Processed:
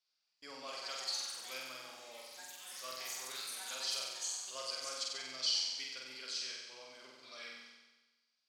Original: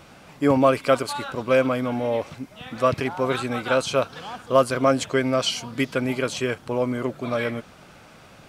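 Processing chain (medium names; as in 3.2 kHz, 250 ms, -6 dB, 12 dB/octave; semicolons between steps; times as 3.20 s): band-pass filter 4.8 kHz, Q 5.6; gate with hold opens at -52 dBFS; ever faster or slower copies 378 ms, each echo +6 st, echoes 3, each echo -6 dB; on a send: flutter echo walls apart 8 m, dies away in 1.2 s; on the sum: trim -1 dB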